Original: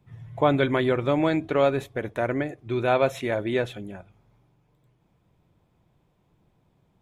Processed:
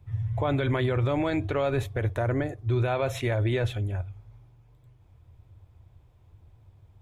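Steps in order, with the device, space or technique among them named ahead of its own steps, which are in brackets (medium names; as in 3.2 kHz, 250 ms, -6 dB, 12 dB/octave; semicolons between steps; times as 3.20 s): 2.16–2.80 s: peaking EQ 2.4 kHz -6 dB 0.77 oct; car stereo with a boomy subwoofer (resonant low shelf 130 Hz +10.5 dB, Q 3; peak limiter -19.5 dBFS, peak gain reduction 10.5 dB); trim +1.5 dB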